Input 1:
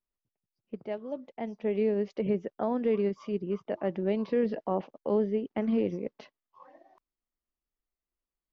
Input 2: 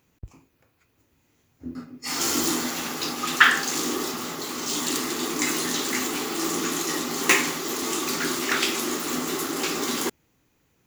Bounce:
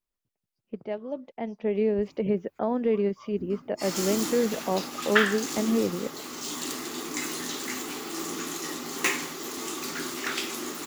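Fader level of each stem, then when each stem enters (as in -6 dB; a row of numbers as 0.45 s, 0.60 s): +2.5 dB, -7.0 dB; 0.00 s, 1.75 s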